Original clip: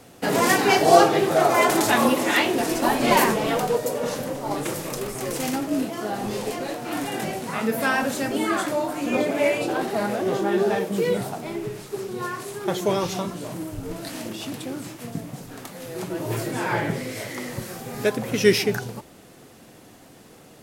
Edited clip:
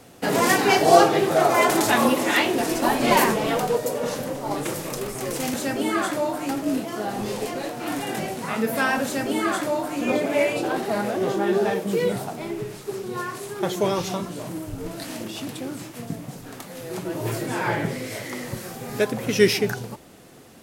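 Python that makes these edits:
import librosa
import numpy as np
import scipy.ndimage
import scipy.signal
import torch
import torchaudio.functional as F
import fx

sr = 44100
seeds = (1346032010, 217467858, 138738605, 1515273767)

y = fx.edit(x, sr, fx.duplicate(start_s=8.09, length_s=0.95, to_s=5.54), tone=tone)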